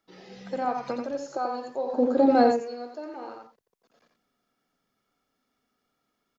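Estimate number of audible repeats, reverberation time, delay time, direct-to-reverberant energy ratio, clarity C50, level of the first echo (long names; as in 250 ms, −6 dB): 1, no reverb audible, 87 ms, no reverb audible, no reverb audible, −5.0 dB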